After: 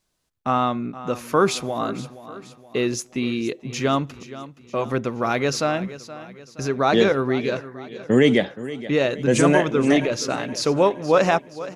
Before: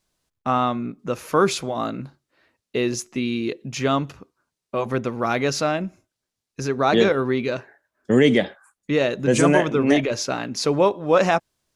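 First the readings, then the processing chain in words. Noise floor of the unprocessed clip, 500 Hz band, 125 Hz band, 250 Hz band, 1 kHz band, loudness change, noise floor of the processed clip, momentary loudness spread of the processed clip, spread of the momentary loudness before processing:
-84 dBFS, 0.0 dB, 0.0 dB, 0.0 dB, 0.0 dB, 0.0 dB, -51 dBFS, 18 LU, 13 LU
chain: feedback delay 472 ms, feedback 48%, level -15.5 dB

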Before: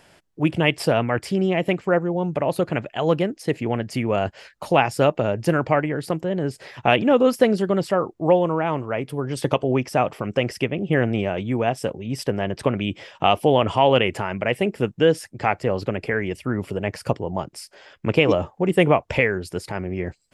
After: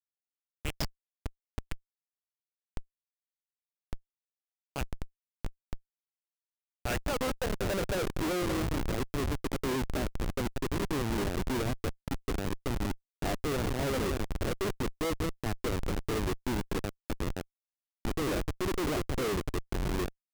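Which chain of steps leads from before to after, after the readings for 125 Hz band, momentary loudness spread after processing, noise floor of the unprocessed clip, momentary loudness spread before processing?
-10.5 dB, 16 LU, -57 dBFS, 10 LU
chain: bass shelf 130 Hz -3 dB; on a send: echo whose repeats swap between lows and highs 187 ms, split 1 kHz, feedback 77%, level -12 dB; on the sum: band-pass sweep 5.8 kHz -> 340 Hz, 6.06–8.16 s; Schmitt trigger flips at -29 dBFS

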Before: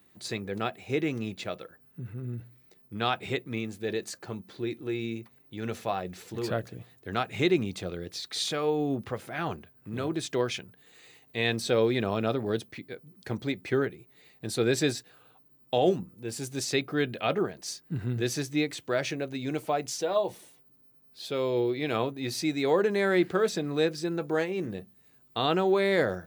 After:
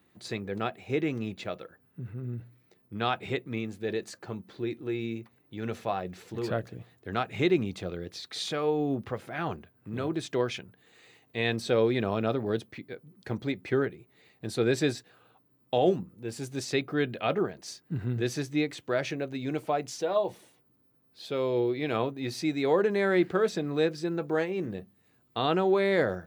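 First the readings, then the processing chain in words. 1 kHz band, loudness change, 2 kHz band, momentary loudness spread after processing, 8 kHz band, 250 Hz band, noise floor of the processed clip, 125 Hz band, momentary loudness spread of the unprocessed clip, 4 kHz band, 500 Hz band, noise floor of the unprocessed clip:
-0.5 dB, -0.5 dB, -1.0 dB, 14 LU, -6.0 dB, 0.0 dB, -67 dBFS, 0.0 dB, 14 LU, -3.5 dB, 0.0 dB, -61 dBFS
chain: treble shelf 4.7 kHz -8.5 dB

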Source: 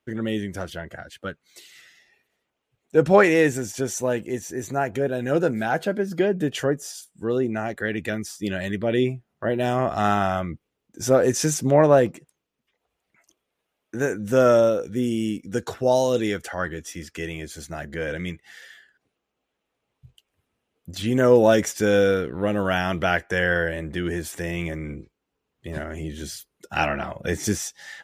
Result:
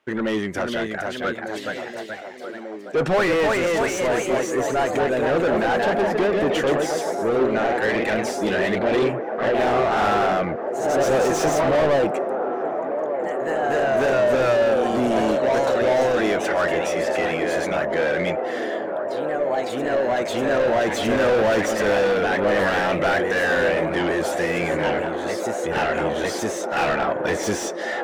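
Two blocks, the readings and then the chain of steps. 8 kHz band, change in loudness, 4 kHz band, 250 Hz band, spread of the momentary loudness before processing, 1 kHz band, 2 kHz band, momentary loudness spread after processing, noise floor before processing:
-1.0 dB, +1.5 dB, +4.0 dB, +0.5 dB, 17 LU, +5.5 dB, +4.5 dB, 7 LU, -80 dBFS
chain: ever faster or slower copies 493 ms, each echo +1 st, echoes 3, each echo -6 dB; overdrive pedal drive 30 dB, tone 1.8 kHz, clips at -3 dBFS; feedback echo behind a band-pass 1195 ms, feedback 83%, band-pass 580 Hz, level -7.5 dB; trim -9 dB

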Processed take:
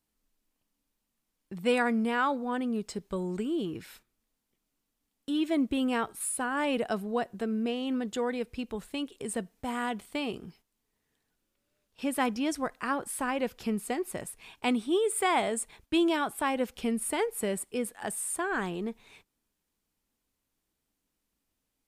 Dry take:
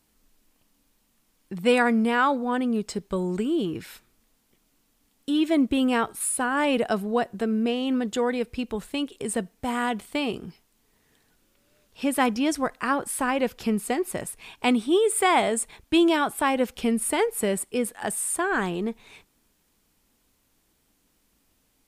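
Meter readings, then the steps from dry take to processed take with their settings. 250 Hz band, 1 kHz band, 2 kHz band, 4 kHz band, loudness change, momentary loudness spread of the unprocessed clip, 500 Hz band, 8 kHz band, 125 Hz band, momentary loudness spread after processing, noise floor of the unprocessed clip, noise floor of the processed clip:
-6.0 dB, -6.0 dB, -6.0 dB, -6.0 dB, -6.0 dB, 9 LU, -6.0 dB, -6.0 dB, -6.0 dB, 9 LU, -69 dBFS, -82 dBFS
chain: gate -51 dBFS, range -8 dB; trim -6 dB

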